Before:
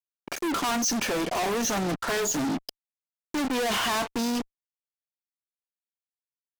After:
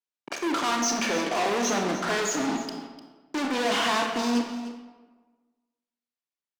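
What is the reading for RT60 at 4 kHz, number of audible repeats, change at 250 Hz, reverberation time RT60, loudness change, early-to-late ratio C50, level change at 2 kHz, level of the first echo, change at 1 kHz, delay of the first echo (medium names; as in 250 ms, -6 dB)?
0.90 s, 1, +1.0 dB, 1.3 s, +0.5 dB, 4.0 dB, +2.0 dB, -14.5 dB, +2.0 dB, 300 ms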